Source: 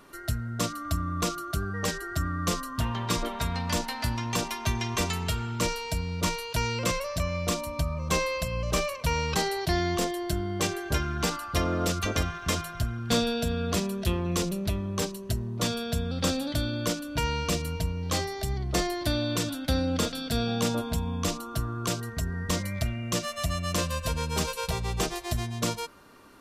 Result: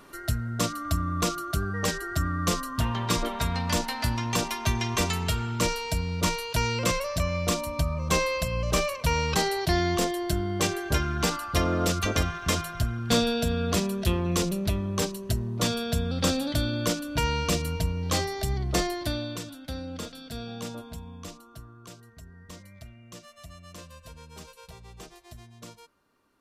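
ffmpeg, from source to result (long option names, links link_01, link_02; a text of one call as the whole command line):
ffmpeg -i in.wav -af "volume=2dB,afade=type=out:start_time=18.68:duration=0.77:silence=0.266073,afade=type=out:start_time=20.64:duration=1.18:silence=0.421697" out.wav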